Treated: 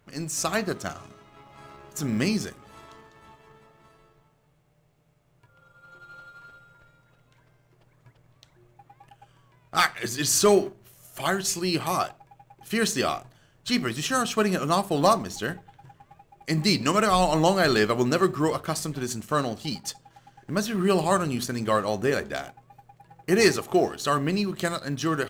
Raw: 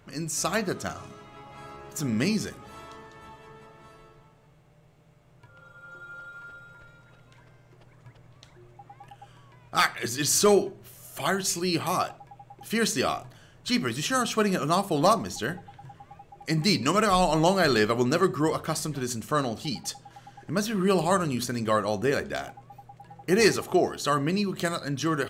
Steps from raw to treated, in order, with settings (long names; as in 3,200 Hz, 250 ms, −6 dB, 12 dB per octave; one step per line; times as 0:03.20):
mu-law and A-law mismatch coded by A
level +1.5 dB